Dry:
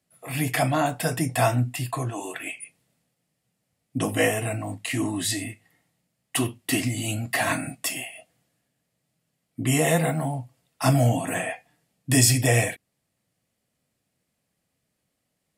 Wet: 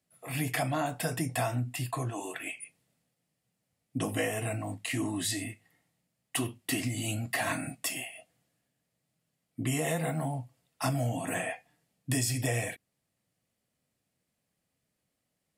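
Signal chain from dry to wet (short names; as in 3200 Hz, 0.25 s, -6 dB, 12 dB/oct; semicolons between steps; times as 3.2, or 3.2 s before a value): compressor 6:1, threshold -22 dBFS, peak gain reduction 9 dB; gain -4.5 dB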